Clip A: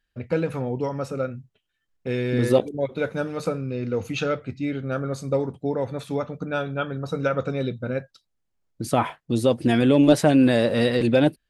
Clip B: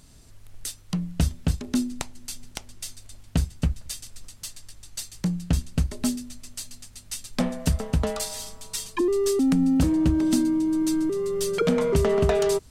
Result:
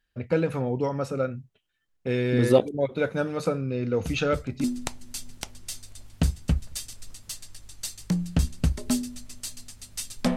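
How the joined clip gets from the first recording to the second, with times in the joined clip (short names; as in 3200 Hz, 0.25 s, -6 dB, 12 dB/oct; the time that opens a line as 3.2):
clip A
4.04 add clip B from 1.18 s 0.60 s -11.5 dB
4.64 switch to clip B from 1.78 s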